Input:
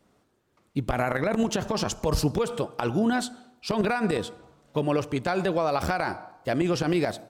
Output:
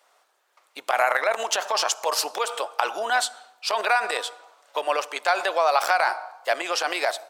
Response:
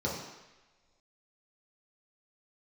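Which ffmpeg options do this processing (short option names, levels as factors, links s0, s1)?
-af "highpass=f=650:w=0.5412,highpass=f=650:w=1.3066,volume=2.51"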